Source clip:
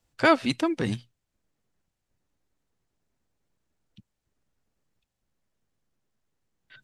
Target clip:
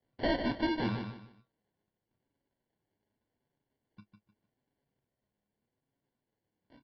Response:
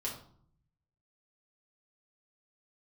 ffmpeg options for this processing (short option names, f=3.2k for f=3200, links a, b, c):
-filter_complex "[0:a]highpass=f=360:p=1,tiltshelf=f=780:g=7,asplit=2[a][b];[b]aeval=exprs='(mod(15.8*val(0)+1,2)-1)/15.8':c=same,volume=-11dB[c];[a][c]amix=inputs=2:normalize=0,flanger=delay=7.3:depth=2.6:regen=44:speed=0.84:shape=sinusoidal,acrusher=samples=35:mix=1:aa=0.000001,asoftclip=type=tanh:threshold=-24dB,asplit=2[d][e];[e]adelay=29,volume=-12dB[f];[d][f]amix=inputs=2:normalize=0,asplit=2[g][h];[h]aecho=0:1:152|304|456:0.447|0.125|0.035[i];[g][i]amix=inputs=2:normalize=0,aresample=11025,aresample=44100"